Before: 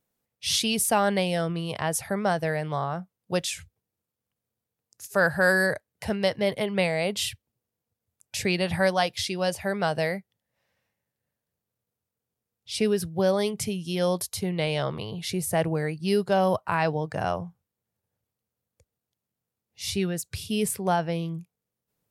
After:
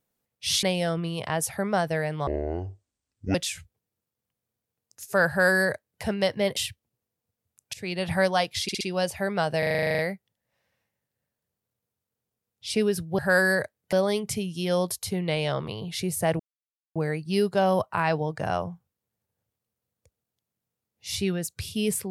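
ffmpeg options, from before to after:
ffmpeg -i in.wav -filter_complex "[0:a]asplit=22[link_01][link_02][link_03][link_04][link_05][link_06][link_07][link_08][link_09][link_10][link_11][link_12][link_13][link_14][link_15][link_16][link_17][link_18][link_19][link_20][link_21][link_22];[link_01]atrim=end=0.632[link_23];[link_02]atrim=start=1.148:end=2.794[link_24];[link_03]atrim=start=2.79:end=3.36,asetpts=PTS-STARTPTS,asetrate=23373,aresample=44100,atrim=end_sample=47428,asetpts=PTS-STARTPTS[link_25];[link_04]atrim=start=3.356:end=6.582[link_26];[link_05]atrim=start=7.188:end=8.36,asetpts=PTS-STARTPTS,afade=type=out:start_time=1.168:duration=0.004:curve=hsin:silence=0.1[link_27];[link_06]atrim=start=8.36:end=9.312,asetpts=PTS-STARTPTS,afade=type=in:duration=0.39:silence=0.1[link_28];[link_07]atrim=start=9.248:end=9.312[link_29];[link_08]atrim=start=9.248:end=9.312[link_30];[link_09]atrim=start=9.248:end=10.072[link_31];[link_10]atrim=start=10.028:end=10.072[link_32];[link_11]atrim=start=10.028:end=10.072[link_33];[link_12]atrim=start=10.028:end=10.072[link_34];[link_13]atrim=start=10.028:end=10.072[link_35];[link_14]atrim=start=10.028:end=10.072[link_36];[link_15]atrim=start=10.028:end=10.072[link_37];[link_16]atrim=start=10.028:end=10.072[link_38];[link_17]atrim=start=10.028:end=10.072[link_39];[link_18]atrim=start=10.028:end=10.072[link_40];[link_19]atrim=start=10.028:end=13.232[link_41];[link_20]atrim=start=5.298:end=6.042[link_42];[link_21]atrim=start=13.228:end=15.7,asetpts=PTS-STARTPTS,afade=type=out:start_time=2.468:duration=0.004:curve=hsin,apad=pad_dur=0.56[link_43];[link_22]atrim=start=15.7,asetpts=PTS-STARTPTS,afade=type=in:duration=0.004:curve=hsin[link_44];[link_23][link_24]acrossfade=duration=0.004:curve1=hsin:curve2=hsin[link_45];[link_45][link_25]acrossfade=duration=0.004:curve1=hsin:curve2=hsin[link_46];[link_46][link_26]acrossfade=duration=0.004:curve1=hsin:curve2=hsin[link_47];[link_27][link_28]concat=n=2:v=0:a=1[link_48];[link_47][link_48]acrossfade=duration=0.004:curve1=hsin:curve2=hsin[link_49];[link_49][link_29]acrossfade=duration=0.004:curve1=hsin:curve2=hsin[link_50];[link_50][link_30]acrossfade=duration=0.004:curve1=hsin:curve2=hsin[link_51];[link_51][link_31]acrossfade=duration=0.004:curve1=hsin:curve2=hsin[link_52];[link_52][link_32]acrossfade=duration=0.004:curve1=hsin:curve2=hsin[link_53];[link_53][link_33]acrossfade=duration=0.004:curve1=hsin:curve2=hsin[link_54];[link_54][link_34]acrossfade=duration=0.004:curve1=hsin:curve2=hsin[link_55];[link_55][link_35]acrossfade=duration=0.004:curve1=hsin:curve2=hsin[link_56];[link_56][link_36]acrossfade=duration=0.004:curve1=hsin:curve2=hsin[link_57];[link_57][link_37]acrossfade=duration=0.004:curve1=hsin:curve2=hsin[link_58];[link_58][link_38]acrossfade=duration=0.004:curve1=hsin:curve2=hsin[link_59];[link_59][link_39]acrossfade=duration=0.004:curve1=hsin:curve2=hsin[link_60];[link_60][link_40]acrossfade=duration=0.004:curve1=hsin:curve2=hsin[link_61];[link_61][link_41]acrossfade=duration=0.004:curve1=hsin:curve2=hsin[link_62];[link_62][link_42]acrossfade=duration=0.004:curve1=hsin:curve2=hsin[link_63];[link_43][link_44]concat=n=2:v=0:a=1[link_64];[link_63][link_64]acrossfade=duration=0.004:curve1=hsin:curve2=hsin" out.wav

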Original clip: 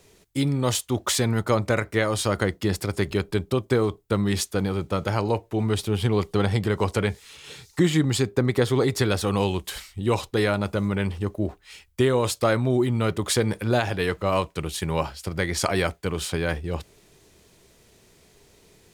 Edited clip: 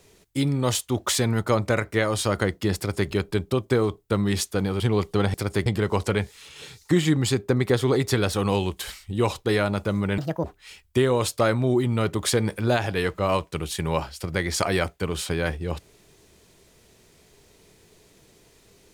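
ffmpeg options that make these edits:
ffmpeg -i in.wav -filter_complex "[0:a]asplit=6[link_01][link_02][link_03][link_04][link_05][link_06];[link_01]atrim=end=4.802[link_07];[link_02]atrim=start=5.998:end=6.542[link_08];[link_03]atrim=start=2.768:end=3.092[link_09];[link_04]atrim=start=6.538:end=11.064[link_10];[link_05]atrim=start=11.06:end=11.47,asetpts=PTS-STARTPTS,asetrate=70119,aresample=44100[link_11];[link_06]atrim=start=11.466[link_12];[link_07][link_08]acrossfade=duration=0.004:curve1=hsin:curve2=hsin[link_13];[link_13][link_09]acrossfade=duration=0.004:curve1=hsin:curve2=hsin[link_14];[link_14][link_10]acrossfade=duration=0.004:curve1=hsin:curve2=hsin[link_15];[link_15][link_11]acrossfade=duration=0.004:curve1=hsin:curve2=hsin[link_16];[link_16][link_12]acrossfade=duration=0.004:curve1=hsin:curve2=hsin" out.wav

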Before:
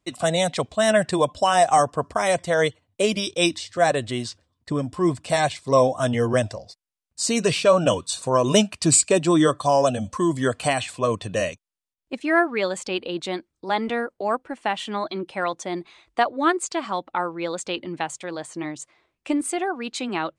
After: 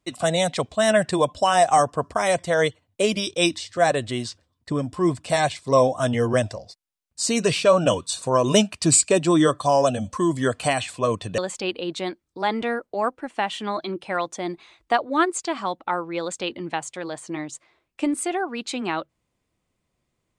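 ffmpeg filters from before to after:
ffmpeg -i in.wav -filter_complex "[0:a]asplit=2[link_01][link_02];[link_01]atrim=end=11.382[link_03];[link_02]atrim=start=12.648[link_04];[link_03][link_04]acrossfade=duration=0.004:curve1=hsin:curve2=hsin" out.wav

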